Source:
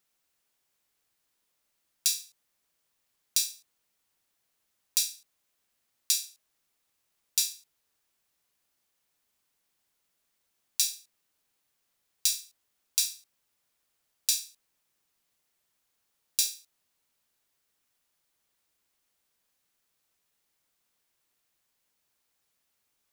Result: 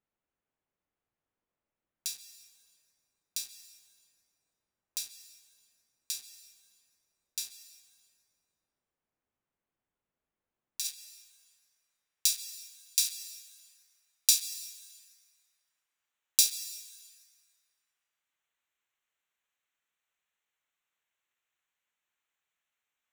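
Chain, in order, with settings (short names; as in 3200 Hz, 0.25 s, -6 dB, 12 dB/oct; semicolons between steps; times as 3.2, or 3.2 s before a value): Wiener smoothing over 9 samples; tilt shelf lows +4 dB, from 10.84 s lows -6 dB, from 13.04 s lows -10 dB; plate-style reverb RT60 2.9 s, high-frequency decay 0.55×, pre-delay 0.115 s, DRR 11 dB; gain -6 dB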